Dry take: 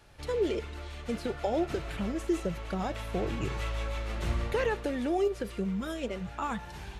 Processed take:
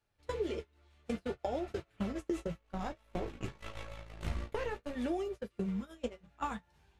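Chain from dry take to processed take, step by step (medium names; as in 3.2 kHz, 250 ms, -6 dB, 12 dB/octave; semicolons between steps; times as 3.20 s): 2.59–4.95 s: partial rectifier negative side -7 dB; gate -31 dBFS, range -34 dB; compression 6:1, threshold -44 dBFS, peak gain reduction 18.5 dB; flange 0.54 Hz, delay 9.1 ms, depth 5.8 ms, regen -39%; trim +13.5 dB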